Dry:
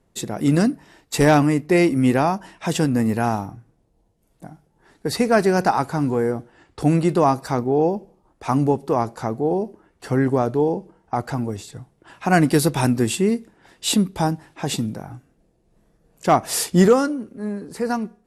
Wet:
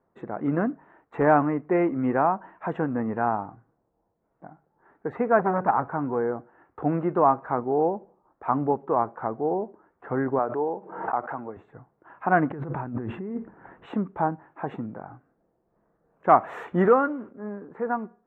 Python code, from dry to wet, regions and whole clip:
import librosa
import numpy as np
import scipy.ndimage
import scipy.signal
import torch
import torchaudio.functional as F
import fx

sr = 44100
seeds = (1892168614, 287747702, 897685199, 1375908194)

y = fx.chain(x, sr, fx.bass_treble(bass_db=8, treble_db=-13),
    fx.transformer_sat(knee_hz=800.0), at=(5.39, 5.88))
y = fx.chain(y, sr, fx.highpass(hz=100.0, slope=12),
    fx.low_shelf(hz=280.0, db=-10.5),
    fx.pre_swell(db_per_s=66.0), at=(10.39, 11.57))
y = fx.chain(y, sr, fx.bass_treble(bass_db=8, treble_db=-13),
    fx.over_compress(threshold_db=-23.0, ratio=-1.0), at=(12.5, 13.86))
y = fx.chain(y, sr, fx.law_mismatch(coded='mu'),
    fx.high_shelf(hz=2600.0, db=12.0), at=(16.29, 17.31))
y = scipy.signal.sosfilt(scipy.signal.cheby2(4, 60, 4500.0, 'lowpass', fs=sr, output='sos'), y)
y = fx.tilt_eq(y, sr, slope=4.0)